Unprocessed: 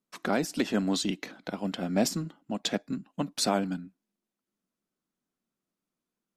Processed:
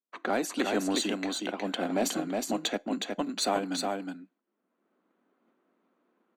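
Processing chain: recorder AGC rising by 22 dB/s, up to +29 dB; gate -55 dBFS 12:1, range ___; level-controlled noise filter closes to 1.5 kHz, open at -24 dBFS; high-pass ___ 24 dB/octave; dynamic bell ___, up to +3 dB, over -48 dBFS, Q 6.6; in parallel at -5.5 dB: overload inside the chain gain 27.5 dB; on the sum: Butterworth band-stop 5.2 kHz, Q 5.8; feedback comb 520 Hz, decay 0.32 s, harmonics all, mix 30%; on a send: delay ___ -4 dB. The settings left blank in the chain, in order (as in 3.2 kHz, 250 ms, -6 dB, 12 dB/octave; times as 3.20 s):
-12 dB, 260 Hz, 760 Hz, 365 ms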